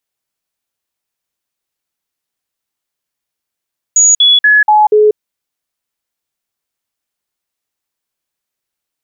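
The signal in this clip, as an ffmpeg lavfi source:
-f lavfi -i "aevalsrc='0.631*clip(min(mod(t,0.24),0.19-mod(t,0.24))/0.005,0,1)*sin(2*PI*6790*pow(2,-floor(t/0.24)/1)*mod(t,0.24))':d=1.2:s=44100"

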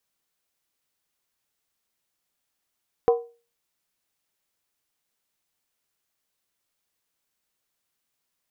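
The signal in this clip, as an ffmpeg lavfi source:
-f lavfi -i "aevalsrc='0.251*pow(10,-3*t/0.34)*sin(2*PI*470*t)+0.1*pow(10,-3*t/0.269)*sin(2*PI*749.2*t)+0.0398*pow(10,-3*t/0.233)*sin(2*PI*1003.9*t)+0.0158*pow(10,-3*t/0.224)*sin(2*PI*1079.1*t)+0.00631*pow(10,-3*t/0.209)*sin(2*PI*1246.9*t)':d=0.63:s=44100"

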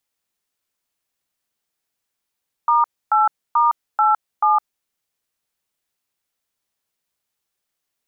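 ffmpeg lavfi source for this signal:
-f lavfi -i "aevalsrc='0.178*clip(min(mod(t,0.436),0.161-mod(t,0.436))/0.002,0,1)*(eq(floor(t/0.436),0)*(sin(2*PI*941*mod(t,0.436))+sin(2*PI*1209*mod(t,0.436)))+eq(floor(t/0.436),1)*(sin(2*PI*852*mod(t,0.436))+sin(2*PI*1336*mod(t,0.436)))+eq(floor(t/0.436),2)*(sin(2*PI*941*mod(t,0.436))+sin(2*PI*1209*mod(t,0.436)))+eq(floor(t/0.436),3)*(sin(2*PI*852*mod(t,0.436))+sin(2*PI*1336*mod(t,0.436)))+eq(floor(t/0.436),4)*(sin(2*PI*852*mod(t,0.436))+sin(2*PI*1209*mod(t,0.436))))':d=2.18:s=44100"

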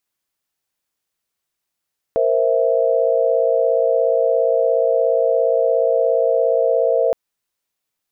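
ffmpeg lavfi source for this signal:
-f lavfi -i "aevalsrc='0.126*(sin(2*PI*466.16*t)+sin(2*PI*523.25*t)+sin(2*PI*659.26*t))':d=4.97:s=44100"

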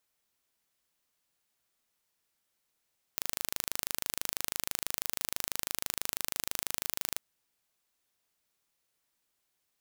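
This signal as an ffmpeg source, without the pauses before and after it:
-f lavfi -i "aevalsrc='0.596*eq(mod(n,1690),0)':d=4.02:s=44100"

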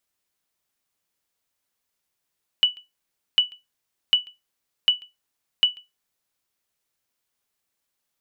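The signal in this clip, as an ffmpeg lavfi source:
-f lavfi -i "aevalsrc='0.376*(sin(2*PI*2960*mod(t,0.75))*exp(-6.91*mod(t,0.75)/0.19)+0.0501*sin(2*PI*2960*max(mod(t,0.75)-0.14,0))*exp(-6.91*max(mod(t,0.75)-0.14,0)/0.19))':d=3.75:s=44100"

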